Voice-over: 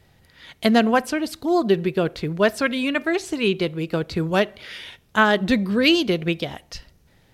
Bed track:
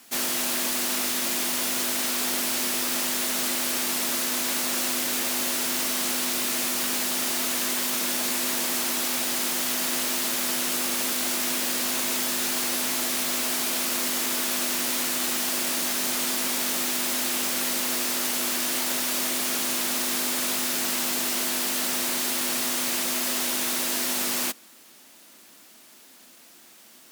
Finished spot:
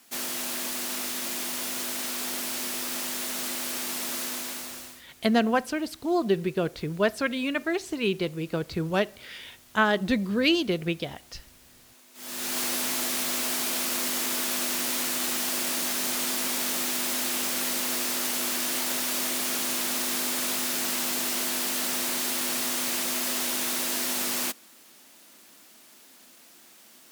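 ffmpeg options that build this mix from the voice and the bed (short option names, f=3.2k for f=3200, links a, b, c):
-filter_complex "[0:a]adelay=4600,volume=-5.5dB[a];[1:a]volume=21.5dB,afade=t=out:st=4.25:d=0.78:silence=0.0668344,afade=t=in:st=12.14:d=0.46:silence=0.0446684[b];[a][b]amix=inputs=2:normalize=0"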